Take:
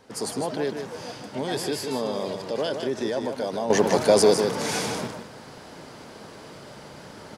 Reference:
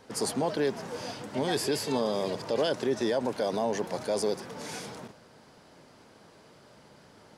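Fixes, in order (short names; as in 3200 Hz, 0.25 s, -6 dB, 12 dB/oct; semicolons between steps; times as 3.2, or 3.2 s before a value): inverse comb 0.154 s -7 dB; gain 0 dB, from 3.7 s -11.5 dB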